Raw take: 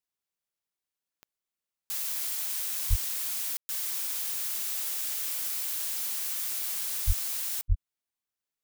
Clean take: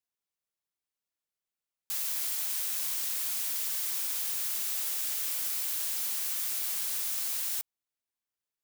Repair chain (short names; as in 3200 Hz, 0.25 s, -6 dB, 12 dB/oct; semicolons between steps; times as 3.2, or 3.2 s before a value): de-click; de-plosive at 2.89/7.06/7.68; room tone fill 3.57–3.69